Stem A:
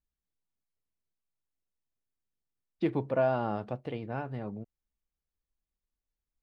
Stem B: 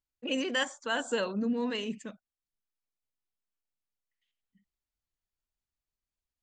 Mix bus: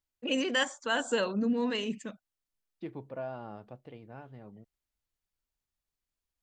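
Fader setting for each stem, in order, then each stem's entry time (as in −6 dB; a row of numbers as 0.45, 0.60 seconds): −11.5, +1.5 decibels; 0.00, 0.00 seconds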